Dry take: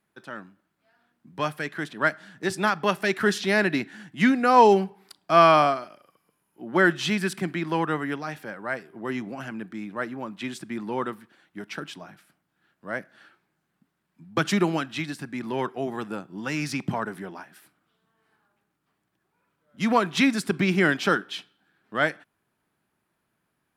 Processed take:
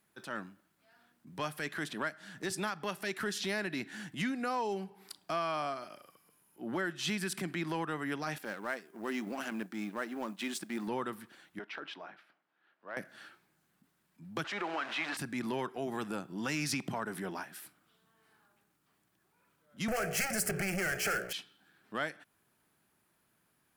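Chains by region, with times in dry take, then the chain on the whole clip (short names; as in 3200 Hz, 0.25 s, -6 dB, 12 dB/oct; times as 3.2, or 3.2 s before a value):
8.38–10.88 G.711 law mismatch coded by A + brick-wall FIR high-pass 160 Hz
11.59–12.97 HPF 440 Hz + air absorption 310 m + compressor 3:1, threshold -38 dBFS
14.44–15.17 zero-crossing step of -27 dBFS + BPF 640–2200 Hz
19.88–21.33 de-hum 60.63 Hz, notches 12 + sample leveller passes 5 + fixed phaser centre 1000 Hz, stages 6
whole clip: compressor 10:1, threshold -31 dBFS; high shelf 4400 Hz +8.5 dB; transient shaper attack -5 dB, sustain 0 dB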